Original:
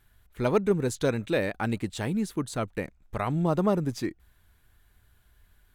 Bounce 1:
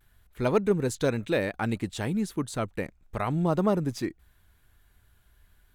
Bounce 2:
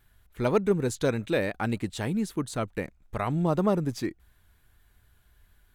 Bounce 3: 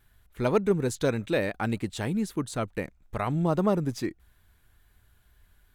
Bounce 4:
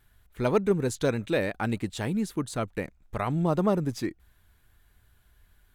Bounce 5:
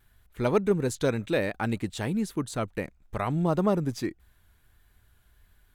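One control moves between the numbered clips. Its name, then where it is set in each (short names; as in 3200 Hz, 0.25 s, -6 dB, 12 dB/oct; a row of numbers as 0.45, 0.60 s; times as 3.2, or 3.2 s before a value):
vibrato, rate: 0.35, 4.2, 2.3, 9.6, 1.5 Hz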